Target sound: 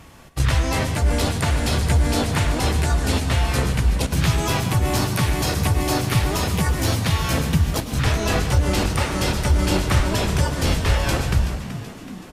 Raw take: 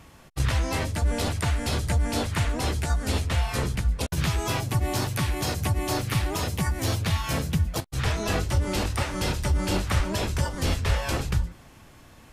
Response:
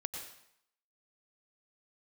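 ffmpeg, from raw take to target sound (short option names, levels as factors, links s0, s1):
-filter_complex "[0:a]asplit=6[s0][s1][s2][s3][s4][s5];[s1]adelay=378,afreqshift=65,volume=0.237[s6];[s2]adelay=756,afreqshift=130,volume=0.122[s7];[s3]adelay=1134,afreqshift=195,volume=0.0617[s8];[s4]adelay=1512,afreqshift=260,volume=0.0316[s9];[s5]adelay=1890,afreqshift=325,volume=0.016[s10];[s0][s6][s7][s8][s9][s10]amix=inputs=6:normalize=0,aeval=exprs='0.251*(cos(1*acos(clip(val(0)/0.251,-1,1)))-cos(1*PI/2))+0.00251*(cos(8*acos(clip(val(0)/0.251,-1,1)))-cos(8*PI/2))':c=same,asplit=2[s11][s12];[1:a]atrim=start_sample=2205,asetrate=39249,aresample=44100[s13];[s12][s13]afir=irnorm=-1:irlink=0,volume=0.891[s14];[s11][s14]amix=inputs=2:normalize=0"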